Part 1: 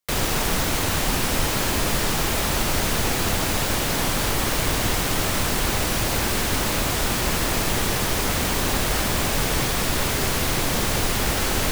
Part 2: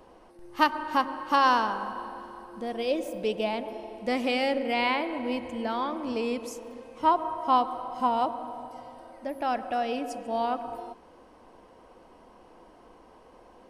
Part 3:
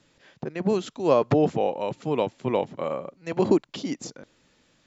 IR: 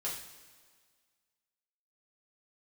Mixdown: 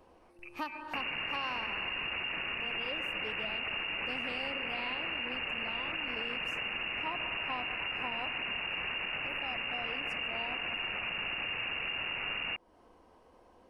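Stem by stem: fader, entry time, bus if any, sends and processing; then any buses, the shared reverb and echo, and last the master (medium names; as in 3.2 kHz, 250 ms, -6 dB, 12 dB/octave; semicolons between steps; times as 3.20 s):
-1.0 dB, 0.85 s, bus A, no send, none
-7.5 dB, 0.00 s, no bus, no send, peaking EQ 80 Hz +12 dB 0.21 oct
-18.5 dB, 0.00 s, bus A, no send, none
bus A: 0.0 dB, frequency inversion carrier 2.8 kHz; peak limiter -19 dBFS, peak gain reduction 10 dB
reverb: none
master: compression 2.5:1, threshold -38 dBFS, peak gain reduction 11 dB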